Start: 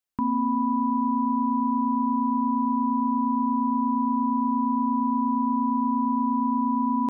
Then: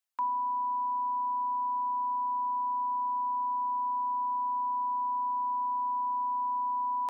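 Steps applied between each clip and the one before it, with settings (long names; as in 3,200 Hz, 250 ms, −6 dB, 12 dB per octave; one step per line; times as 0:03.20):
reverb reduction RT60 0.6 s
high-pass filter 660 Hz 24 dB per octave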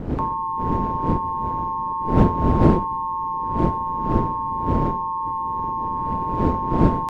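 wind on the microphone 250 Hz −28 dBFS
ring modulation 89 Hz
level +8 dB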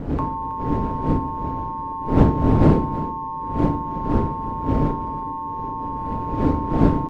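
single-tap delay 322 ms −14 dB
on a send at −7.5 dB: convolution reverb RT60 0.50 s, pre-delay 4 ms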